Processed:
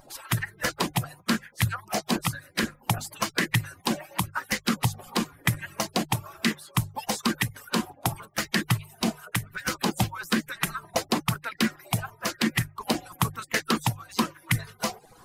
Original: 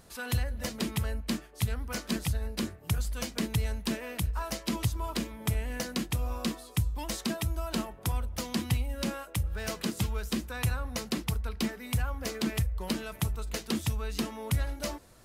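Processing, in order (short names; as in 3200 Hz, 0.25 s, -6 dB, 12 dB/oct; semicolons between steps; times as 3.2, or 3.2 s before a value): median-filter separation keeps percussive; notches 50/100/150 Hz; LFO bell 1 Hz 720–1900 Hz +14 dB; gain +6 dB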